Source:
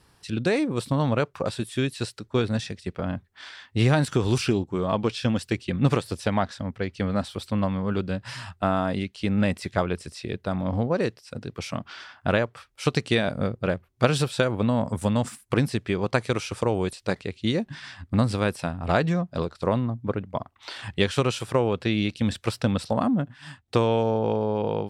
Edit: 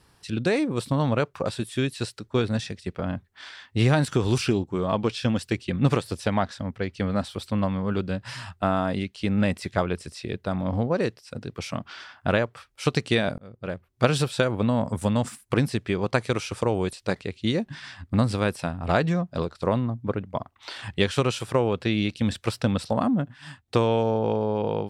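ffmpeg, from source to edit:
ffmpeg -i in.wav -filter_complex "[0:a]asplit=2[link_01][link_02];[link_01]atrim=end=13.38,asetpts=PTS-STARTPTS,afade=type=out:start_time=13.376:duration=0.004:curve=hsin[link_03];[link_02]atrim=start=13.38,asetpts=PTS-STARTPTS,afade=type=in:duration=0.67[link_04];[link_03][link_04]concat=n=2:v=0:a=1" out.wav

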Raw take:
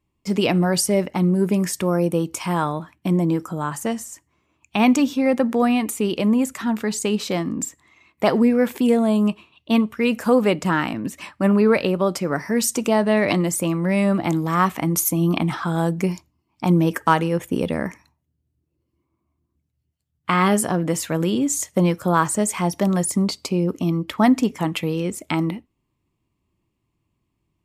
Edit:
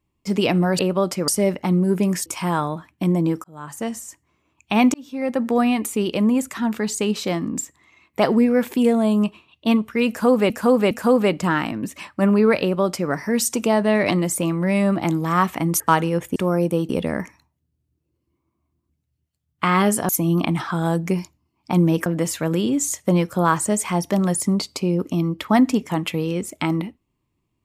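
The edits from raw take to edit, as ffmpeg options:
ffmpeg -i in.wav -filter_complex "[0:a]asplit=13[link_01][link_02][link_03][link_04][link_05][link_06][link_07][link_08][link_09][link_10][link_11][link_12][link_13];[link_01]atrim=end=0.792[link_14];[link_02]atrim=start=11.828:end=12.322[link_15];[link_03]atrim=start=0.788:end=1.772[link_16];[link_04]atrim=start=2.298:end=3.48,asetpts=PTS-STARTPTS,afade=type=out:start_time=1.178:duration=0.004:curve=hsin[link_17];[link_05]atrim=start=3.48:end=4.98,asetpts=PTS-STARTPTS,afade=type=in:duration=0.55,afade=type=out:start_time=1.496:duration=0.004:curve=hsin[link_18];[link_06]atrim=start=4.98:end=10.542,asetpts=PTS-STARTPTS,afade=type=in:duration=0.58[link_19];[link_07]atrim=start=10.128:end=10.542[link_20];[link_08]atrim=start=10.128:end=15.022[link_21];[link_09]atrim=start=16.988:end=17.552[link_22];[link_10]atrim=start=1.768:end=2.302[link_23];[link_11]atrim=start=17.548:end=20.752[link_24];[link_12]atrim=start=15.018:end=16.992[link_25];[link_13]atrim=start=20.748[link_26];[link_14][link_15]acrossfade=duration=0.004:curve1=hsin:curve2=hsin[link_27];[link_27][link_16]acrossfade=duration=0.004:curve1=hsin:curve2=hsin[link_28];[link_17][link_18][link_19]concat=n=3:v=0:a=1[link_29];[link_28][link_29]acrossfade=duration=0.004:curve1=hsin:curve2=hsin[link_30];[link_30][link_20]acrossfade=duration=0.004:curve1=hsin:curve2=hsin[link_31];[link_31][link_21]acrossfade=duration=0.004:curve1=hsin:curve2=hsin[link_32];[link_32][link_22]acrossfade=duration=0.004:curve1=hsin:curve2=hsin[link_33];[link_33][link_23]acrossfade=duration=0.004:curve1=hsin:curve2=hsin[link_34];[link_34][link_24]acrossfade=duration=0.004:curve1=hsin:curve2=hsin[link_35];[link_35][link_25]acrossfade=duration=0.004:curve1=hsin:curve2=hsin[link_36];[link_36][link_26]acrossfade=duration=0.004:curve1=hsin:curve2=hsin" out.wav

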